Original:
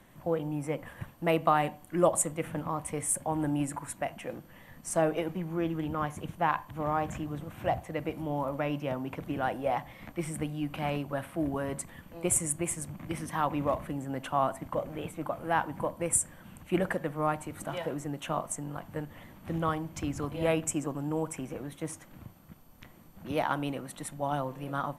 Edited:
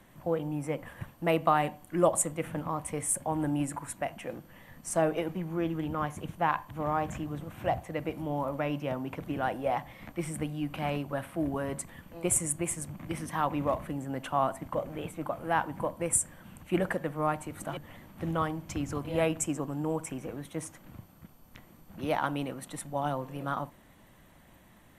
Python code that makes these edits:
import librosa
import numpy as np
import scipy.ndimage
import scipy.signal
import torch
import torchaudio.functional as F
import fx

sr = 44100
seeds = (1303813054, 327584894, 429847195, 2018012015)

y = fx.edit(x, sr, fx.cut(start_s=17.77, length_s=1.27), tone=tone)